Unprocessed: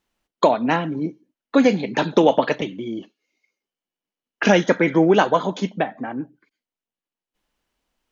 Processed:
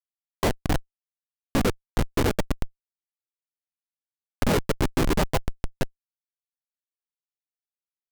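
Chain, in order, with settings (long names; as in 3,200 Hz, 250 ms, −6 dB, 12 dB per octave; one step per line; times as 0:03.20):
pitch-shifted copies added −4 semitones −1 dB, +3 semitones −10 dB
reverb reduction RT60 1.1 s
comparator with hysteresis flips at −11 dBFS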